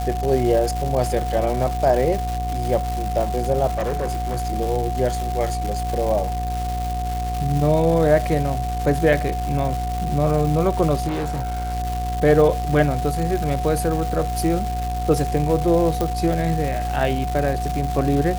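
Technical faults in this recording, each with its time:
buzz 60 Hz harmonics 20 -26 dBFS
crackle 470 per s -25 dBFS
whine 730 Hz -26 dBFS
3.71–4.47 s: clipped -19.5 dBFS
11.07–11.74 s: clipped -21.5 dBFS
16.01 s: pop

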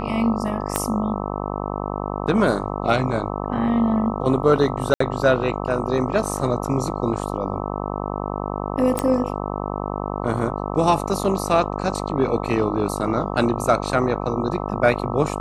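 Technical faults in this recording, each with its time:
buzz 50 Hz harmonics 26 -27 dBFS
0.76 s: pop -5 dBFS
4.94–5.00 s: dropout 64 ms
8.99 s: pop -7 dBFS

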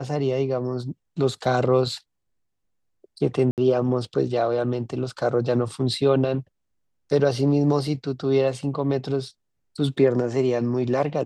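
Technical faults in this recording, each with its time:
3.51–3.58 s: dropout 68 ms

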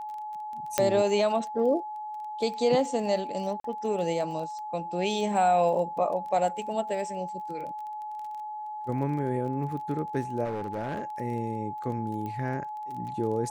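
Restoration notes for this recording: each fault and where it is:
crackle 23 per s -37 dBFS
whine 850 Hz -34 dBFS
0.78 s: pop -7 dBFS
3.60–3.64 s: dropout 43 ms
10.44–11.10 s: clipped -28 dBFS
12.26 s: pop -25 dBFS

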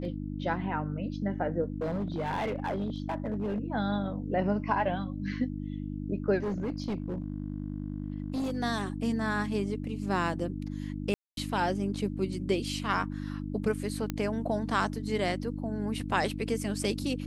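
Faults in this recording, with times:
hum 50 Hz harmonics 6 -36 dBFS
1.72–3.64 s: clipped -27.5 dBFS
6.40–8.57 s: clipped -28 dBFS
11.14–11.37 s: dropout 232 ms
14.10 s: pop -17 dBFS

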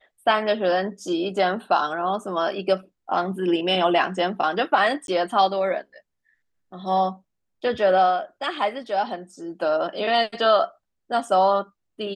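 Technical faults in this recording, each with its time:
5.07–5.08 s: dropout

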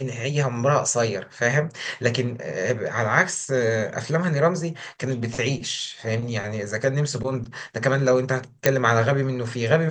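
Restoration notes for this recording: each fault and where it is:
8.66 s: pop -2 dBFS

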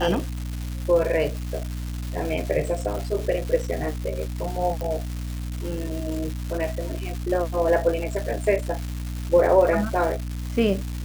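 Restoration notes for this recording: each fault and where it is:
crackle 510 per s -29 dBFS
hum 60 Hz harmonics 5 -30 dBFS
4.81 s: pop

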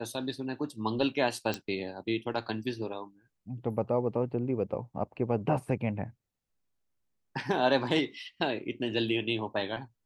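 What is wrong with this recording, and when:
1.54 s: pop -17 dBFS

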